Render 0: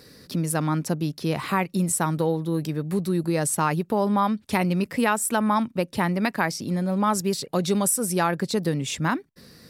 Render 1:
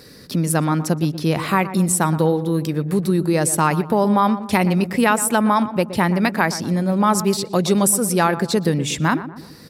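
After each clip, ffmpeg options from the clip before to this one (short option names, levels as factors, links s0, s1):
-filter_complex "[0:a]asplit=2[s0][s1];[s1]adelay=120,lowpass=f=1300:p=1,volume=0.251,asplit=2[s2][s3];[s3]adelay=120,lowpass=f=1300:p=1,volume=0.5,asplit=2[s4][s5];[s5]adelay=120,lowpass=f=1300:p=1,volume=0.5,asplit=2[s6][s7];[s7]adelay=120,lowpass=f=1300:p=1,volume=0.5,asplit=2[s8][s9];[s9]adelay=120,lowpass=f=1300:p=1,volume=0.5[s10];[s0][s2][s4][s6][s8][s10]amix=inputs=6:normalize=0,volume=1.88"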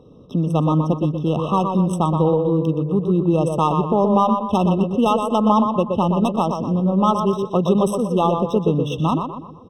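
-filter_complex "[0:a]adynamicsmooth=sensitivity=1:basefreq=1600,asplit=2[s0][s1];[s1]adelay=122,lowpass=f=2800:p=1,volume=0.562,asplit=2[s2][s3];[s3]adelay=122,lowpass=f=2800:p=1,volume=0.43,asplit=2[s4][s5];[s5]adelay=122,lowpass=f=2800:p=1,volume=0.43,asplit=2[s6][s7];[s7]adelay=122,lowpass=f=2800:p=1,volume=0.43,asplit=2[s8][s9];[s9]adelay=122,lowpass=f=2800:p=1,volume=0.43[s10];[s0][s2][s4][s6][s8][s10]amix=inputs=6:normalize=0,afftfilt=real='re*eq(mod(floor(b*sr/1024/1300),2),0)':imag='im*eq(mod(floor(b*sr/1024/1300),2),0)':win_size=1024:overlap=0.75"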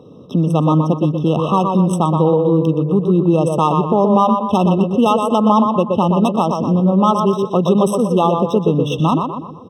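-filter_complex "[0:a]highpass=110,asplit=2[s0][s1];[s1]alimiter=limit=0.188:level=0:latency=1:release=287,volume=1.12[s2];[s0][s2]amix=inputs=2:normalize=0"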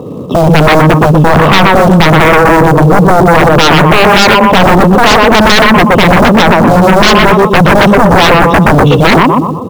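-filter_complex "[0:a]lowpass=2200,asplit=2[s0][s1];[s1]acrusher=bits=5:mode=log:mix=0:aa=0.000001,volume=0.631[s2];[s0][s2]amix=inputs=2:normalize=0,aeval=exprs='1.41*sin(PI/2*5.62*val(0)/1.41)':c=same,volume=0.631"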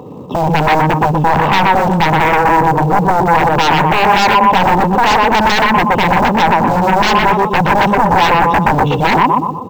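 -af "superequalizer=9b=2.82:11b=1.41:12b=1.41:16b=0.447,volume=0.335"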